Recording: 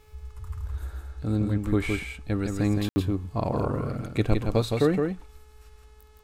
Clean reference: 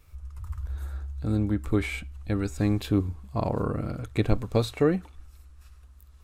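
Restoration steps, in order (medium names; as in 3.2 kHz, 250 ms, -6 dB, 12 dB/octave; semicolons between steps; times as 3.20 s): de-hum 428.3 Hz, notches 22; room tone fill 2.89–2.96 s; inverse comb 165 ms -4.5 dB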